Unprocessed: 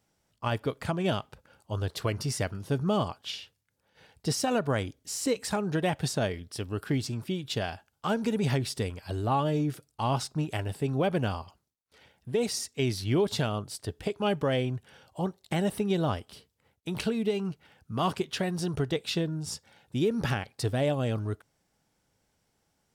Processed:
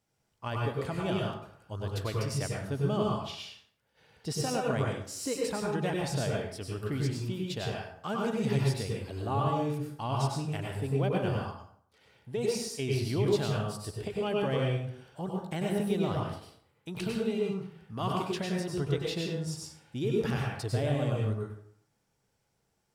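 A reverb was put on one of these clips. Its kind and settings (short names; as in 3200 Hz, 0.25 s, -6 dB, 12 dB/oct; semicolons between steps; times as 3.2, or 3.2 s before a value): plate-style reverb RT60 0.63 s, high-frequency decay 0.65×, pre-delay 85 ms, DRR -2 dB; gain -6.5 dB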